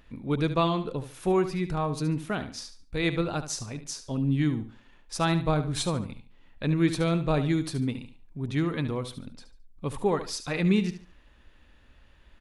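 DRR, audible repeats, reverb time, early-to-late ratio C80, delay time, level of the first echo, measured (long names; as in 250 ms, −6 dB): no reverb audible, 3, no reverb audible, no reverb audible, 72 ms, −11.5 dB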